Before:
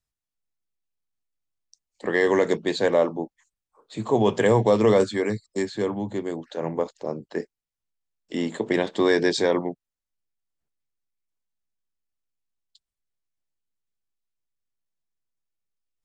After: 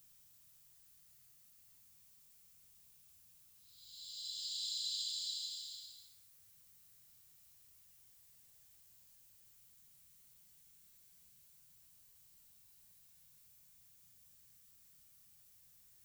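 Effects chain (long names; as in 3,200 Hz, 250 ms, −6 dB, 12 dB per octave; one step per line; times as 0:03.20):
random phases in short frames
RIAA equalisation recording
extreme stretch with random phases 5.3×, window 0.50 s, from 0:11.83
level +15 dB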